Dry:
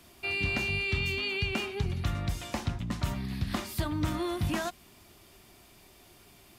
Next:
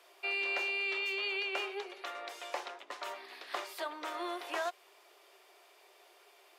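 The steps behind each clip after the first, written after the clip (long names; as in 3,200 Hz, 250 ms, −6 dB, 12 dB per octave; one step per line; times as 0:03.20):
Butterworth high-pass 400 Hz 48 dB per octave
high-shelf EQ 4,800 Hz −11.5 dB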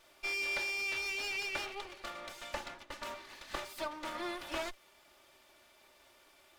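lower of the sound and its delayed copy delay 3.4 ms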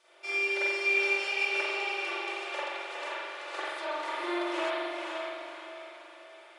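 linear-phase brick-wall band-pass 310–11,000 Hz
feedback delay with all-pass diffusion 497 ms, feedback 43%, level −3.5 dB
spring reverb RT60 1.4 s, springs 43 ms, chirp 45 ms, DRR −9 dB
level −3 dB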